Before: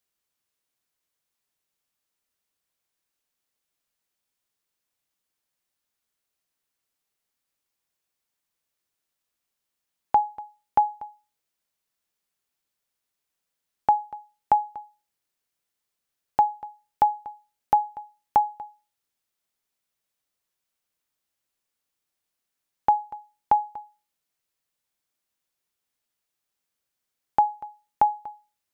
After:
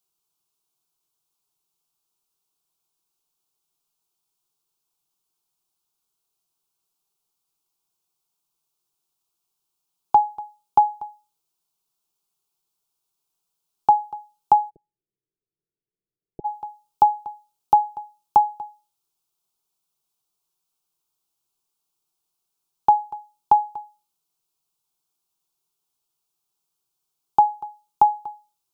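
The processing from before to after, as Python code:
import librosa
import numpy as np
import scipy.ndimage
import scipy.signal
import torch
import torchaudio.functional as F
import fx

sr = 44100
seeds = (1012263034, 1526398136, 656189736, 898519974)

y = fx.steep_lowpass(x, sr, hz=580.0, slope=72, at=(14.69, 16.44), fade=0.02)
y = fx.fixed_phaser(y, sr, hz=370.0, stages=8)
y = F.gain(torch.from_numpy(y), 4.5).numpy()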